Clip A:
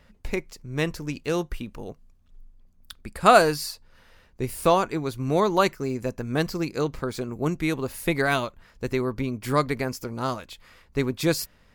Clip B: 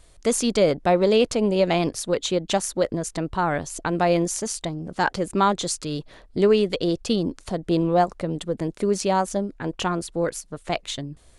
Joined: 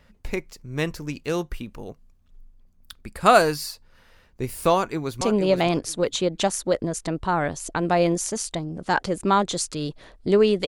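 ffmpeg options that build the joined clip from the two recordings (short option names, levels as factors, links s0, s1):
-filter_complex "[0:a]apad=whole_dur=10.67,atrim=end=10.67,atrim=end=5.212[s0];[1:a]atrim=start=1.308:end=6.77[s1];[s0][s1]acrossfade=d=0.004:c1=hsin:c2=hsin,asplit=2[s2][s3];[s3]afade=t=in:st=4.74:d=0.01,afade=t=out:st=5.21:d=0.01,aecho=0:1:470|940|1410:0.473151|0.0709727|0.0106459[s4];[s2][s4]amix=inputs=2:normalize=0"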